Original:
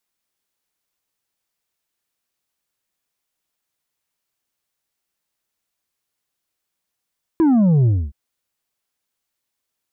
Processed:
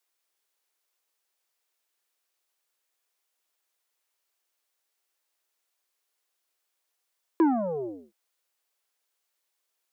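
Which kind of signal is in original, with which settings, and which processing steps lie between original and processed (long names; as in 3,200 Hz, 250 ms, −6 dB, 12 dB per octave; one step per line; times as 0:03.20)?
bass drop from 340 Hz, over 0.72 s, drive 5 dB, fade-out 0.26 s, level −12 dB
high-pass filter 360 Hz 24 dB per octave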